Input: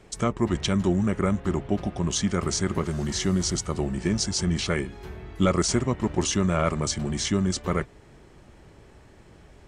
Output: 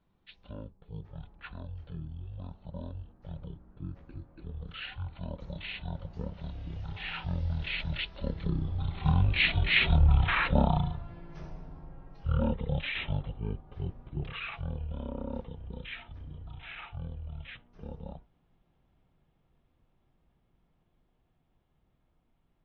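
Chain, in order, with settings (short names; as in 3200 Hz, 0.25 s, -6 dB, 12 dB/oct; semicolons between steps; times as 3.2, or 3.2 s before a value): Doppler pass-by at 4.27, 16 m/s, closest 5 m; speed mistake 78 rpm record played at 33 rpm; gain +3 dB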